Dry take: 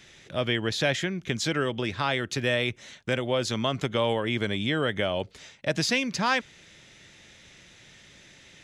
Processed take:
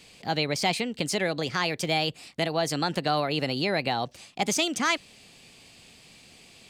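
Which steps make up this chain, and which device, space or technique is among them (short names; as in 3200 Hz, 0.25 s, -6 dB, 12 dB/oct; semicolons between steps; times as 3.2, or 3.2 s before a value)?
nightcore (varispeed +29%)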